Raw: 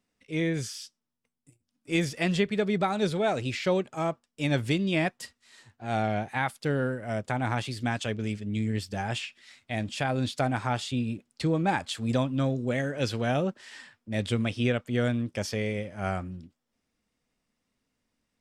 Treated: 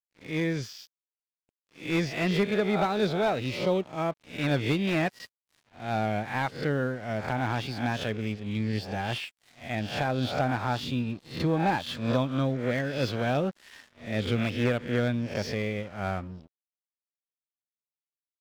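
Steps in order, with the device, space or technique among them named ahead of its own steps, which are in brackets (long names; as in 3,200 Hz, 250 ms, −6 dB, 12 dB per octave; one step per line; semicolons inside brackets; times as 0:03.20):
peak hold with a rise ahead of every peak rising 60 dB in 0.50 s
low-pass filter 5,400 Hz 24 dB per octave
0:03.46–0:03.98: parametric band 1,600 Hz −13.5 dB 0.59 octaves
early transistor amplifier (dead-zone distortion −48 dBFS; slew-rate limiting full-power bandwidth 90 Hz)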